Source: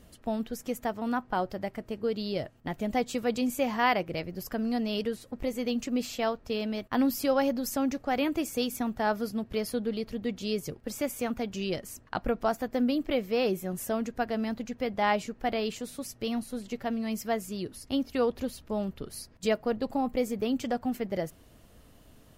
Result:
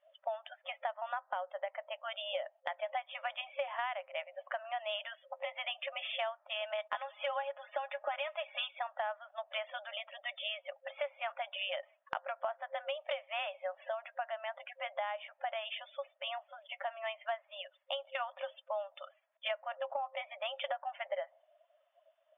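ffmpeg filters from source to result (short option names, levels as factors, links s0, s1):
-filter_complex "[0:a]asettb=1/sr,asplit=3[s0][s1][s2];[s0]atrim=end=6.704[s3];[s1]atrim=start=6.7:end=8.71,asetpts=PTS-STARTPTS,afade=t=in:d=0.004:c=qsin,afade=t=out:st=2.006:d=0.004:c=qsin,aecho=1:1:4.8:0.86,atrim=end_sample=88641[s4];[s2]atrim=start=8.706[s5];[s3][s4]acrossfade=d=0.004:c1=hsin:c2=qsin[s6];[s6][s5]acrossfade=d=0.004:c1=qsin:c2=hsin,asettb=1/sr,asplit=3[s7][s8][s9];[s7]atrim=end=13.714[s10];[s8]atrim=start=13.71:end=16.9,asetpts=PTS-STARTPTS,afade=t=in:d=0.004:c=qsin,afade=t=out:st=3.186:d=0.004:c=qsin,acompressor=threshold=0.02:ratio=2:attack=3.2:release=140:knee=1:detection=peak[s11];[s9]atrim=start=16.896[s12];[s10][s11]acrossfade=d=0.004:c1=hsin:c2=qsin[s13];[s13][s12]acrossfade=d=0.004:c1=qsin:c2=hsin,afftfilt=real='re*between(b*sr/4096,530,3600)':imag='im*between(b*sr/4096,530,3600)':win_size=4096:overlap=0.75,afftdn=nr=23:nf=-52,acompressor=threshold=0.00891:ratio=10,volume=2.24"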